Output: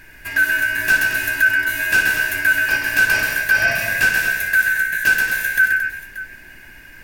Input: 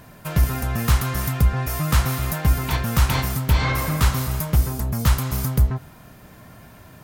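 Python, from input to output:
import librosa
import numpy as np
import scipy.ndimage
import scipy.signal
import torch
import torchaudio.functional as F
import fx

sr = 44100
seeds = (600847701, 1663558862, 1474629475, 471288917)

y = fx.band_shuffle(x, sr, order='2143')
y = fx.dmg_noise_colour(y, sr, seeds[0], colour='brown', level_db=-48.0)
y = fx.echo_multitap(y, sr, ms=(60, 130, 225, 581), db=(-11.0, -5.0, -8.5, -15.0))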